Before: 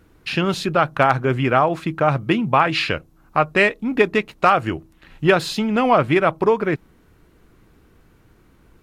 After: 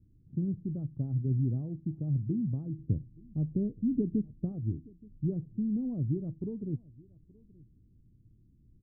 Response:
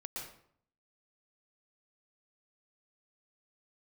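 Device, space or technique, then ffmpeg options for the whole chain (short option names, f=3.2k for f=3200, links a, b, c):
the neighbour's flat through the wall: -filter_complex "[0:a]asettb=1/sr,asplit=3[a][b][c];[a]atrim=end=2.784[d];[b]atrim=start=2.78:end=4.52,asetpts=PTS-STARTPTS,afade=t=in:d=0.004:c=qsin,afade=t=out:st=1.736:d=0.004:c=qsin,tiltshelf=f=1.1k:g=6[e];[c]atrim=start=4.516[f];[d][e]acrossfade=d=0.004:c1=hsin:c2=qsin[g];[g][f]acrossfade=d=0.004:c1=qsin:c2=hsin,lowpass=f=260:w=0.5412,lowpass=f=260:w=1.3066,equalizer=f=110:t=o:w=0.44:g=8,asplit=2[h][i];[i]adelay=874.6,volume=-24dB,highshelf=f=4k:g=-19.7[j];[h][j]amix=inputs=2:normalize=0,volume=-8.5dB"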